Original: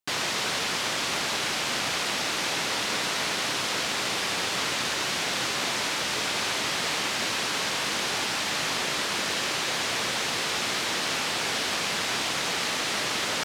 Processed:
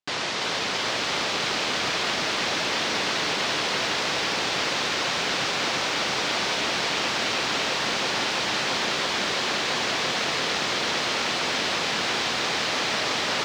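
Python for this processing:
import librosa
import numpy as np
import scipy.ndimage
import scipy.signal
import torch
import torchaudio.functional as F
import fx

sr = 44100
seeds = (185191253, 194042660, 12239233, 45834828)

y = scipy.signal.sosfilt(scipy.signal.cheby1(2, 1.0, 5100.0, 'lowpass', fs=sr, output='sos'), x)
y = fx.peak_eq(y, sr, hz=520.0, db=3.0, octaves=2.2)
y = fx.echo_crushed(y, sr, ms=335, feedback_pct=80, bits=9, wet_db=-5.0)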